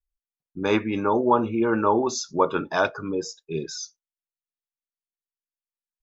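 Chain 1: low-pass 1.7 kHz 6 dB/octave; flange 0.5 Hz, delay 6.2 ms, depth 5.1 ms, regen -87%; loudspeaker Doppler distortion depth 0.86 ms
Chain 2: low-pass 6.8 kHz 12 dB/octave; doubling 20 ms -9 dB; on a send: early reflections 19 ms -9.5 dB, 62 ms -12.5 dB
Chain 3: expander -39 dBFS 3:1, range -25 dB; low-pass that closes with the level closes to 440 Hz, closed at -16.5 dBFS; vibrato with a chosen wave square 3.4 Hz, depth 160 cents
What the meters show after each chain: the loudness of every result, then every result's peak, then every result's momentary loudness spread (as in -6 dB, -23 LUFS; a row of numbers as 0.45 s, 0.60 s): -30.0 LUFS, -23.5 LUFS, -26.5 LUFS; -12.0 dBFS, -5.0 dBFS, -9.0 dBFS; 11 LU, 11 LU, 10 LU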